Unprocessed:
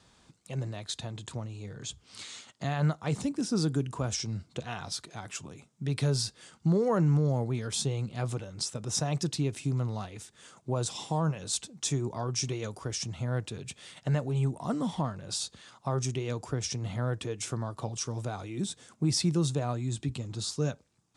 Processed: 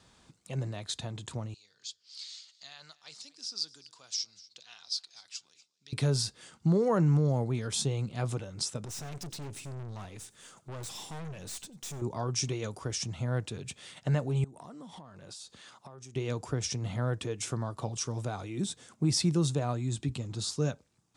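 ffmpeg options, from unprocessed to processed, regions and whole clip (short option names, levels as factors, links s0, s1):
-filter_complex "[0:a]asettb=1/sr,asplit=3[s0][s1][s2];[s0]atrim=end=1.544[s3];[s1]atrim=start=1.54:end=5.93,asetpts=PTS-STARTPTS,afade=t=in:d=0.004:c=qsin,afade=t=out:st=4.386:d=0.004:c=qsin,acontrast=57,bandpass=f=4700:t=q:w=4.4,aecho=1:1:243:0.0944,atrim=end_sample=193599[s4];[s2]atrim=start=5.926[s5];[s3][s4]acrossfade=d=0.004:c1=hsin:c2=qsin[s6];[s6][s5]acrossfade=d=0.004:c1=qsin:c2=hsin,asettb=1/sr,asplit=3[s7][s8][s9];[s7]atrim=end=8.854[s10];[s8]atrim=start=8.85:end=12.02,asetpts=PTS-STARTPTS,afade=t=in:d=0.004:c=qsin,afade=t=out:st=3.166:d=0.004:c=qsin,highshelf=f=8300:g=7.5,aeval=exprs='(tanh(89.1*val(0)+0.35)-tanh(0.35))/89.1':c=same,aecho=1:1:93:0.0794,atrim=end_sample=139797[s11];[s9]atrim=start=12.016[s12];[s10][s11]acrossfade=d=0.004:c1=hsin:c2=qsin[s13];[s13][s12]acrossfade=d=0.004:c1=qsin:c2=hsin,asettb=1/sr,asplit=3[s14][s15][s16];[s14]atrim=end=14.444[s17];[s15]atrim=start=14.44:end=16.16,asetpts=PTS-STARTPTS,afade=t=in:d=0.004:c=qsin,afade=t=out:st=1.716:d=0.004:c=qsin,acompressor=threshold=0.00794:ratio=12:attack=3.2:release=140:knee=1:detection=peak,lowshelf=f=130:g=-10[s18];[s16]atrim=start=16.156[s19];[s17][s18]acrossfade=d=0.004:c1=hsin:c2=qsin[s20];[s20][s19]acrossfade=d=0.004:c1=qsin:c2=hsin"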